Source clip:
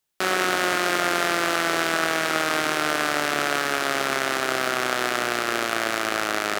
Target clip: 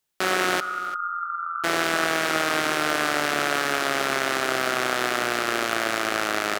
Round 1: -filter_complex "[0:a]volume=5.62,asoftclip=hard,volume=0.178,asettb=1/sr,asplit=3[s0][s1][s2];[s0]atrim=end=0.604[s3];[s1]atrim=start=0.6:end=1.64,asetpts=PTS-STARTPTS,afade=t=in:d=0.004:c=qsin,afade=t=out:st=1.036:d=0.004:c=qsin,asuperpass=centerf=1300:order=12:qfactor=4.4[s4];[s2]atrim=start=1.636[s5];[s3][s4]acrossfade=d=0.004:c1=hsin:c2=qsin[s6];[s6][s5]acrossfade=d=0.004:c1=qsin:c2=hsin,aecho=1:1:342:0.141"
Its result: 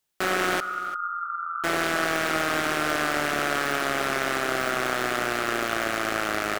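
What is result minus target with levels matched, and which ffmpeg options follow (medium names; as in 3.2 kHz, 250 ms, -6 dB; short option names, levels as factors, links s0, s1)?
overload inside the chain: distortion +15 dB
-filter_complex "[0:a]volume=2.51,asoftclip=hard,volume=0.398,asettb=1/sr,asplit=3[s0][s1][s2];[s0]atrim=end=0.604[s3];[s1]atrim=start=0.6:end=1.64,asetpts=PTS-STARTPTS,afade=t=in:d=0.004:c=qsin,afade=t=out:st=1.036:d=0.004:c=qsin,asuperpass=centerf=1300:order=12:qfactor=4.4[s4];[s2]atrim=start=1.636[s5];[s3][s4]acrossfade=d=0.004:c1=hsin:c2=qsin[s6];[s6][s5]acrossfade=d=0.004:c1=qsin:c2=hsin,aecho=1:1:342:0.141"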